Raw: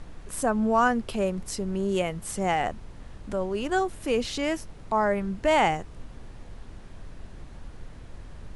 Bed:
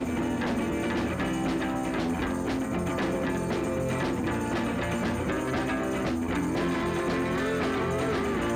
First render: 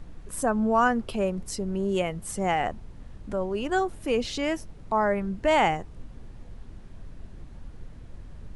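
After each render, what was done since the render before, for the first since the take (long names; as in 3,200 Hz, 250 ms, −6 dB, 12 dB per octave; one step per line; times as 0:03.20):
broadband denoise 6 dB, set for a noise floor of −45 dBFS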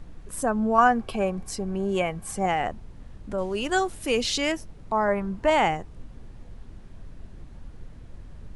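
0:00.78–0:02.46: hollow resonant body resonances 780/1,100/1,600/2,300 Hz, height 12 dB
0:03.38–0:04.52: high-shelf EQ 2,200 Hz +10.5 dB
0:05.08–0:05.50: parametric band 1,000 Hz +8.5 dB 0.73 octaves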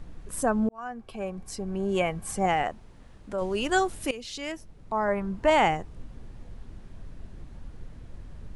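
0:00.69–0:02.08: fade in
0:02.63–0:03.42: low-shelf EQ 260 Hz −8.5 dB
0:04.11–0:05.52: fade in, from −17.5 dB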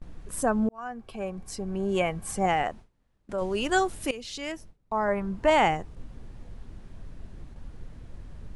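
noise gate with hold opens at −36 dBFS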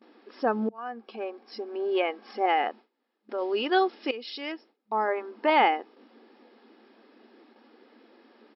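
brick-wall band-pass 210–5,500 Hz
comb filter 2.4 ms, depth 34%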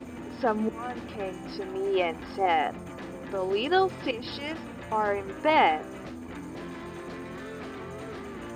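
mix in bed −11.5 dB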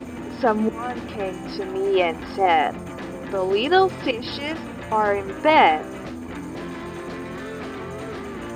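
level +6.5 dB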